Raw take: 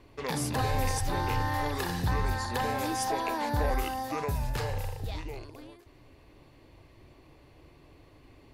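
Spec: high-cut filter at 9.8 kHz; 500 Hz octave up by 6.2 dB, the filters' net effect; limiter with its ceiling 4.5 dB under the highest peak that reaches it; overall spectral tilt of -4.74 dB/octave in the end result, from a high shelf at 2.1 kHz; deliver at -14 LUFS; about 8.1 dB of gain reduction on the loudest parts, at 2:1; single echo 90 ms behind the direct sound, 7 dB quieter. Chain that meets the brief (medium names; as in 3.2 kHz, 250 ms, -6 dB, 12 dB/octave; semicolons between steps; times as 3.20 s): low-pass 9.8 kHz; peaking EQ 500 Hz +7 dB; treble shelf 2.1 kHz +3.5 dB; compression 2:1, threshold -37 dBFS; peak limiter -27 dBFS; delay 90 ms -7 dB; trim +22.5 dB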